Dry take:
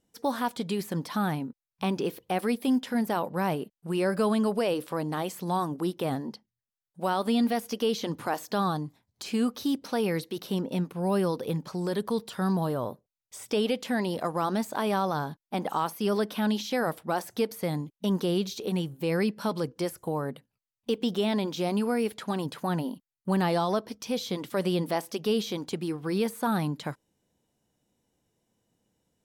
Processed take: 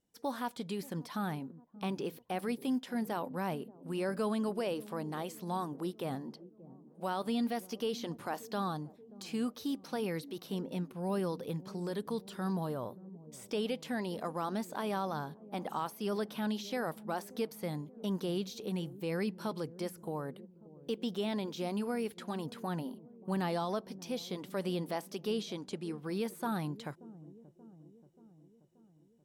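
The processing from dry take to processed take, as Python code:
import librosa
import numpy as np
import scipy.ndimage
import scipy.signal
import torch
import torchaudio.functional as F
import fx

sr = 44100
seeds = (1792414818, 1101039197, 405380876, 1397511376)

y = fx.lowpass(x, sr, hz=11000.0, slope=24, at=(25.31, 25.98))
y = fx.echo_wet_lowpass(y, sr, ms=581, feedback_pct=60, hz=430.0, wet_db=-15.5)
y = y * librosa.db_to_amplitude(-8.0)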